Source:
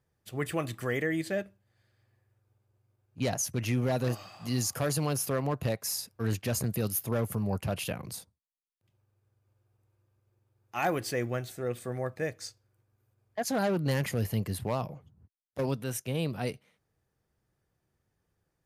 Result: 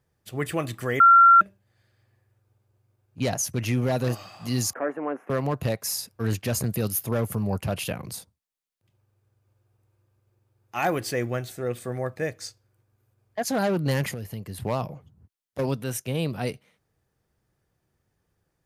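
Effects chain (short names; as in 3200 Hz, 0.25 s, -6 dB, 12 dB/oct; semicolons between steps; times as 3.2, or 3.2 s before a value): 1–1.41 bleep 1370 Hz -14 dBFS; 4.73–5.3 elliptic band-pass 260–1900 Hz, stop band 40 dB; 14.1–14.58 compressor 4:1, threshold -37 dBFS, peak gain reduction 10.5 dB; gain +4 dB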